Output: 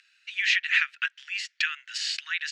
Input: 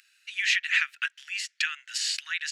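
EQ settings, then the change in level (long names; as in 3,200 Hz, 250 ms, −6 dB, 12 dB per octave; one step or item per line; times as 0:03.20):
high-pass filter 770 Hz 24 dB per octave
low-pass filter 5,000 Hz 12 dB per octave
+1.5 dB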